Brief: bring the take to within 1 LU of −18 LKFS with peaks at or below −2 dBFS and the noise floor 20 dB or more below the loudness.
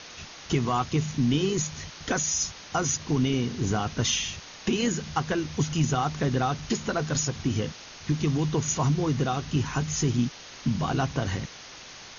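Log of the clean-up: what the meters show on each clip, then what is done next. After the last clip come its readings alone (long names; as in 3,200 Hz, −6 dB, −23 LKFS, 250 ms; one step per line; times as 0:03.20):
background noise floor −45 dBFS; target noise floor −48 dBFS; integrated loudness −27.5 LKFS; sample peak −13.0 dBFS; target loudness −18.0 LKFS
→ broadband denoise 6 dB, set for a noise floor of −45 dBFS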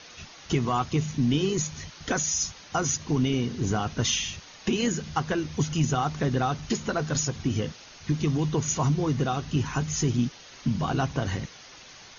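background noise floor −48 dBFS; integrated loudness −27.5 LKFS; sample peak −13.0 dBFS; target loudness −18.0 LKFS
→ level +9.5 dB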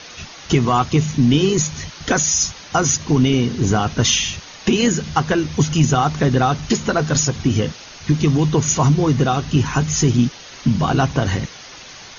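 integrated loudness −18.0 LKFS; sample peak −3.5 dBFS; background noise floor −39 dBFS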